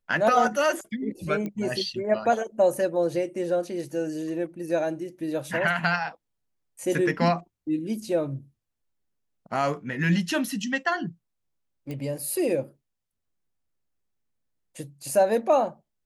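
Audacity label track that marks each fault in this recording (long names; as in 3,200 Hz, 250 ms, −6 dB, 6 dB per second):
1.460000	1.460000	click −21 dBFS
11.910000	11.910000	click −23 dBFS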